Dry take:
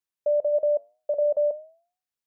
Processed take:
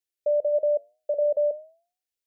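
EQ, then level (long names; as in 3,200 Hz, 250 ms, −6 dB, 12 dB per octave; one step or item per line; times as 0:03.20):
phaser with its sweep stopped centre 430 Hz, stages 4
+1.5 dB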